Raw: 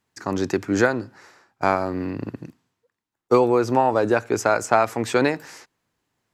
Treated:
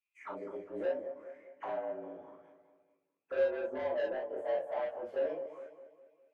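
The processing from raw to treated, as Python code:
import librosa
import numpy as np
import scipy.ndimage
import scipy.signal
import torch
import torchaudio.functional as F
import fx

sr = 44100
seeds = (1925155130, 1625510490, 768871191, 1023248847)

y = fx.partial_stretch(x, sr, pct=110)
y = fx.auto_wah(y, sr, base_hz=580.0, top_hz=2600.0, q=11.0, full_db=-25.5, direction='down')
y = fx.peak_eq(y, sr, hz=620.0, db=-2.5, octaves=0.77)
y = fx.echo_feedback(y, sr, ms=204, feedback_pct=48, wet_db=-13)
y = 10.0 ** (-31.5 / 20.0) * np.tanh(y / 10.0 ** (-31.5 / 20.0))
y = fx.rev_gated(y, sr, seeds[0], gate_ms=80, shape='flat', drr_db=-3.0)
y = F.gain(torch.from_numpy(y), -2.0).numpy()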